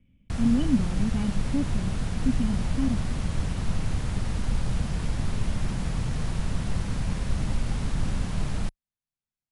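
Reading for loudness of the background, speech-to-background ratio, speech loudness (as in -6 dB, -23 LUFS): -31.0 LUFS, 2.0 dB, -29.0 LUFS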